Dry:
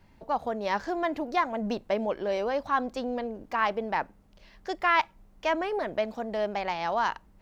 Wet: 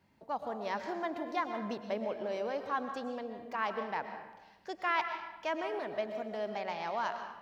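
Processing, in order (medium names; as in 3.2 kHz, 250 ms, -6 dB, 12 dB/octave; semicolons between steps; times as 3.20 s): high-pass 110 Hz 12 dB/octave; reverberation RT60 1.1 s, pre-delay 80 ms, DRR 6.5 dB; trim -8 dB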